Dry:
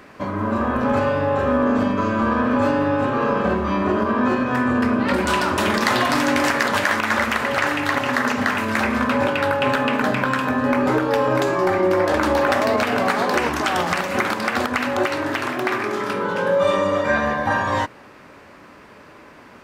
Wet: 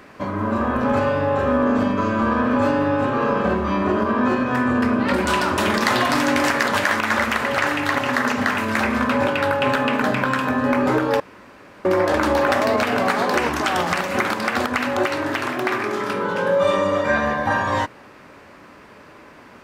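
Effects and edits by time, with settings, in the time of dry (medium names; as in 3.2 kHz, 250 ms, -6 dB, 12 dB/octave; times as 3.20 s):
11.20–11.85 s: room tone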